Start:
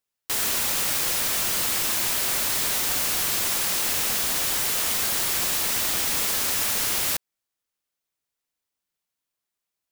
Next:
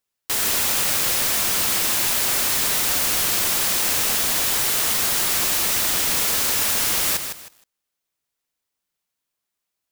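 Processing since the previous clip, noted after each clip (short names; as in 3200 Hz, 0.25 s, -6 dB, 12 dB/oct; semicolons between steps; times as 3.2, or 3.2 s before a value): lo-fi delay 0.157 s, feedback 35%, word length 7-bit, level -7 dB; gain +3 dB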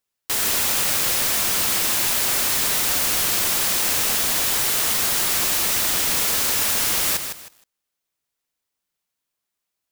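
nothing audible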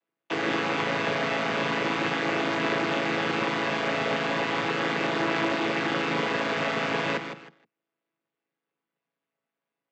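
chord vocoder major triad, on A2; Chebyshev band-pass 270–2500 Hz, order 2; gain +2 dB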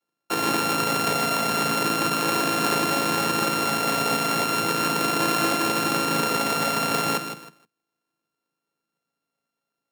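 sample sorter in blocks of 32 samples; gain +3.5 dB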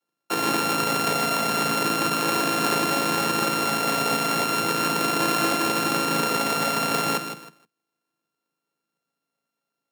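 HPF 100 Hz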